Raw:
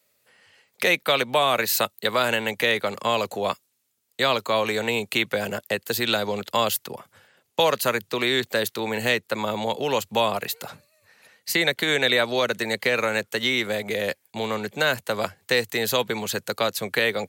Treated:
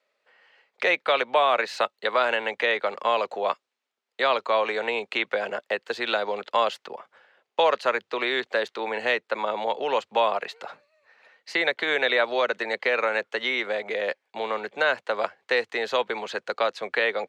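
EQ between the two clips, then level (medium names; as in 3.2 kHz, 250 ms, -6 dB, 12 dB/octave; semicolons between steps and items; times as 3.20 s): high-pass 520 Hz 12 dB/octave; low-pass 2 kHz 6 dB/octave; distance through air 110 m; +3.0 dB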